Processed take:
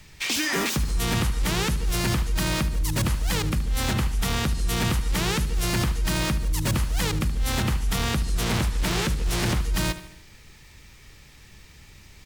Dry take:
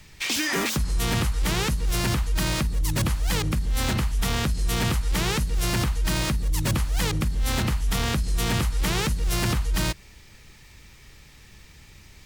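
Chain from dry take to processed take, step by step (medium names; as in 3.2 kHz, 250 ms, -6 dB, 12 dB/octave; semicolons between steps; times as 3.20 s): feedback delay 74 ms, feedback 51%, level -14.5 dB; 8.35–9.60 s: loudspeaker Doppler distortion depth 0.51 ms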